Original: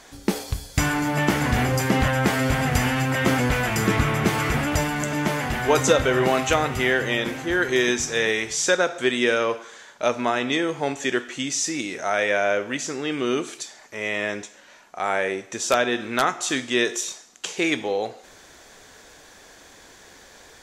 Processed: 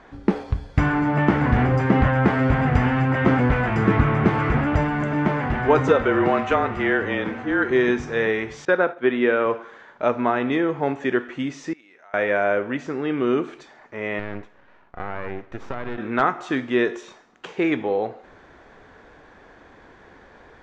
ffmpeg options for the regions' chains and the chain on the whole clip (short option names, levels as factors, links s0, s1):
-filter_complex "[0:a]asettb=1/sr,asplit=3[s0][s1][s2];[s0]atrim=end=5.884[s3];[s1]atrim=start=5.88:end=7.71,asetpts=PTS-STARTPTS,afade=t=in:d=0.004:c=qsin,afade=t=out:st=1.826:d=0.004:c=qsin,highpass=f=260:p=1,afreqshift=-28[s4];[s2]atrim=start=7.706[s5];[s3][s4]acrossfade=d=0.004:c1=hsin:c2=qsin[s6];[s6][s5]acrossfade=d=0.004:c1=qsin:c2=hsin,asettb=1/sr,asplit=3[s7][s8][s9];[s7]atrim=end=8.654[s10];[s8]atrim=start=8.65:end=9.46,asetpts=PTS-STARTPTS,afade=t=in:d=0.004:c=qsin,afade=t=out:st=0.806:d=0.004:c=qsin,highpass=150,lowpass=3900,agate=range=0.0224:threshold=0.0355:ratio=3:release=100:detection=peak[s11];[s9]atrim=start=9.456[s12];[s10][s11]acrossfade=d=0.004:c1=hsin:c2=qsin[s13];[s13][s12]acrossfade=d=0.004:c1=qsin:c2=hsin,asettb=1/sr,asplit=3[s14][s15][s16];[s14]atrim=end=11.734[s17];[s15]atrim=start=11.73:end=12.14,asetpts=PTS-STARTPTS,afade=t=in:d=0.004:c=qsin,afade=t=out:st=0.406:d=0.004:c=qsin,lowpass=f=1700:p=1,acompressor=threshold=0.0398:ratio=4:attack=3.2:release=140:knee=1:detection=peak,aderivative[s18];[s16]atrim=start=12.136[s19];[s17][s18]acrossfade=d=0.004:c1=hsin:c2=qsin[s20];[s20][s19]acrossfade=d=0.004:c1=qsin:c2=hsin,asettb=1/sr,asplit=3[s21][s22][s23];[s21]atrim=end=14.194[s24];[s22]atrim=start=14.19:end=15.98,asetpts=PTS-STARTPTS,afade=t=in:d=0.004:c=qsin,afade=t=out:st=1.786:d=0.004:c=qsin,highshelf=f=5400:g=-9.5,acompressor=threshold=0.0631:ratio=6:attack=3.2:release=140:knee=1:detection=peak,aeval=exprs='max(val(0),0)':c=same[s25];[s23]atrim=start=15.976[s26];[s24][s25]acrossfade=d=0.004:c1=hsin:c2=qsin[s27];[s27][s26]acrossfade=d=0.004:c1=qsin:c2=hsin,lowpass=1500,equalizer=f=610:t=o:w=0.86:g=-3,volume=1.58"